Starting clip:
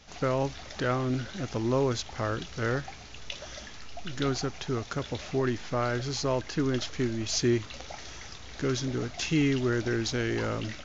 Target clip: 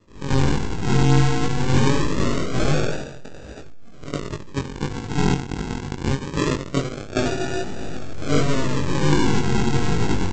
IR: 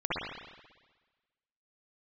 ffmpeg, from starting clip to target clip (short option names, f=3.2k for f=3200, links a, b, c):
-filter_complex "[1:a]atrim=start_sample=2205,asetrate=33957,aresample=44100[a];[0:a][a]afir=irnorm=-1:irlink=0,acrossover=split=270|1500[b][c][d];[d]acontrast=87[e];[b][c][e]amix=inputs=3:normalize=0,asetrate=46305,aresample=44100,aeval=exprs='0.891*(cos(1*acos(clip(val(0)/0.891,-1,1)))-cos(1*PI/2))+0.0126*(cos(3*acos(clip(val(0)/0.891,-1,1)))-cos(3*PI/2))+0.141*(cos(8*acos(clip(val(0)/0.891,-1,1)))-cos(8*PI/2))':c=same,aresample=16000,acrusher=samples=21:mix=1:aa=0.000001:lfo=1:lforange=12.6:lforate=0.23,aresample=44100,flanger=delay=19:depth=3.3:speed=1.4,volume=-4dB"